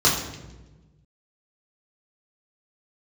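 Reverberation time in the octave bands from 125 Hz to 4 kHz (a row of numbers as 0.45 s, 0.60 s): 2.0 s, 1.6 s, 1.4 s, 0.95 s, 0.90 s, 0.80 s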